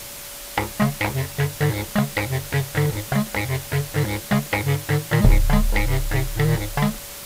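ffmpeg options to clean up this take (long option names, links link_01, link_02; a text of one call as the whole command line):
ffmpeg -i in.wav -af "adeclick=threshold=4,bandreject=frequency=570:width=30,afwtdn=0.018" out.wav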